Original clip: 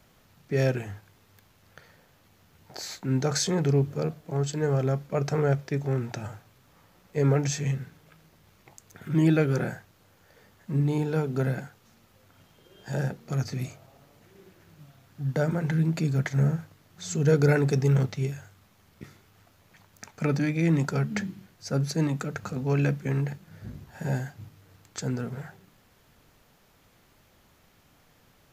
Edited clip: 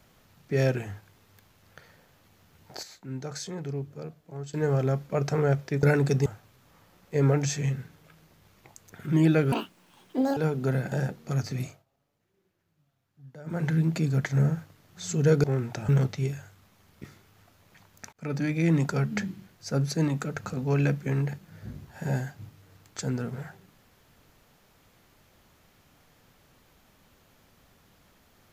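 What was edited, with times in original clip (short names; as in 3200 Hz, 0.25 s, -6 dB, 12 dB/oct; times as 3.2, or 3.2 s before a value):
2.83–4.54 gain -10.5 dB
5.83–6.28 swap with 17.45–17.88
9.54–11.09 speed 183%
11.64–12.93 cut
13.68–15.62 dip -20 dB, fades 0.17 s
20.12–20.66 fade in equal-power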